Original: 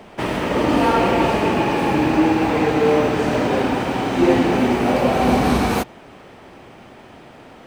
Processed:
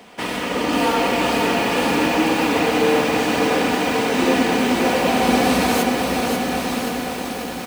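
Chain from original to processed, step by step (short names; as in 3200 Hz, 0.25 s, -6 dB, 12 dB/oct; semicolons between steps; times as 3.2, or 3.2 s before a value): HPF 110 Hz 6 dB/oct; high shelf 2200 Hz +10 dB; comb 4.1 ms, depth 43%; on a send: diffused feedback echo 1.083 s, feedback 50%, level -6 dB; on the sum: lo-fi delay 0.538 s, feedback 55%, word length 5-bit, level -4 dB; gain -4.5 dB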